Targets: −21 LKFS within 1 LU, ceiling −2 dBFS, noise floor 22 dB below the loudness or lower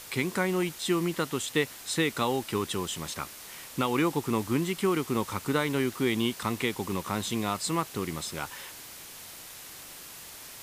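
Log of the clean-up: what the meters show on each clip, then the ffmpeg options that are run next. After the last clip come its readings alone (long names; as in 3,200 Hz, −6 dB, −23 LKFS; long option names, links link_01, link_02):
background noise floor −45 dBFS; target noise floor −52 dBFS; integrated loudness −29.5 LKFS; sample peak −13.0 dBFS; target loudness −21.0 LKFS
→ -af "afftdn=noise_reduction=7:noise_floor=-45"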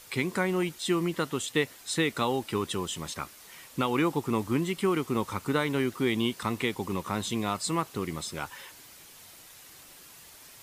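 background noise floor −51 dBFS; target noise floor −52 dBFS
→ -af "afftdn=noise_reduction=6:noise_floor=-51"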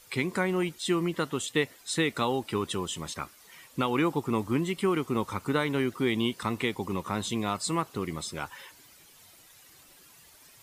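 background noise floor −56 dBFS; integrated loudness −30.0 LKFS; sample peak −13.5 dBFS; target loudness −21.0 LKFS
→ -af "volume=9dB"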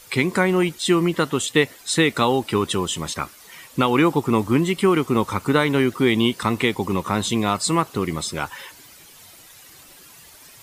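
integrated loudness −21.0 LKFS; sample peak −4.5 dBFS; background noise floor −47 dBFS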